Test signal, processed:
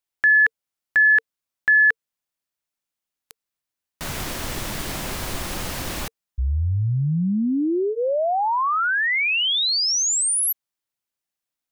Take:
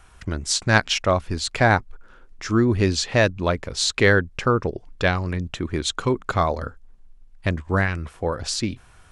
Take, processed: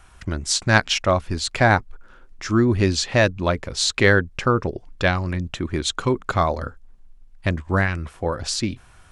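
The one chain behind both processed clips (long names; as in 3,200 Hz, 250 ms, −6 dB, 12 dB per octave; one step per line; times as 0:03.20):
notch filter 450 Hz, Q 12
level +1 dB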